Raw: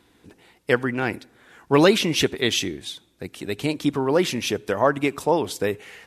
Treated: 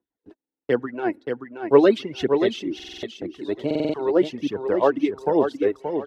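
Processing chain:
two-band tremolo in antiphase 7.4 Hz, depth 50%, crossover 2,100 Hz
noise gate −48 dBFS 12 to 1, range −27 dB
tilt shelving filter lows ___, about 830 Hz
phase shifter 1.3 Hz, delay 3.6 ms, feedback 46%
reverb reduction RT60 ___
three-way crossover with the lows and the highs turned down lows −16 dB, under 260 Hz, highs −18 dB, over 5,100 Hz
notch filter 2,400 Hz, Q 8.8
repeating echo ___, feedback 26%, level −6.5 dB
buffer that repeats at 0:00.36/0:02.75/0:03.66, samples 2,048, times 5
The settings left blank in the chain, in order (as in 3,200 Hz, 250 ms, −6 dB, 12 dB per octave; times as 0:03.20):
+8.5 dB, 1.2 s, 577 ms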